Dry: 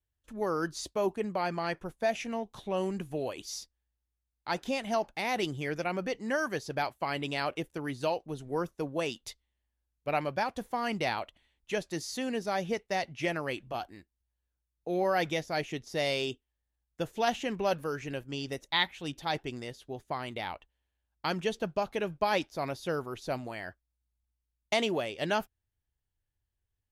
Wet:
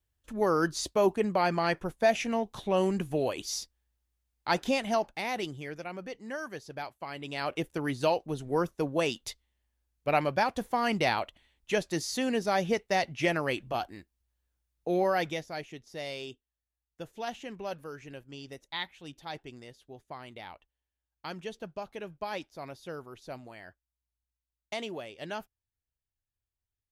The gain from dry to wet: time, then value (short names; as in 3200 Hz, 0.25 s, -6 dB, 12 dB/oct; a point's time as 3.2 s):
4.66 s +5 dB
5.79 s -7 dB
7.18 s -7 dB
7.65 s +4 dB
14.89 s +4 dB
15.7 s -8 dB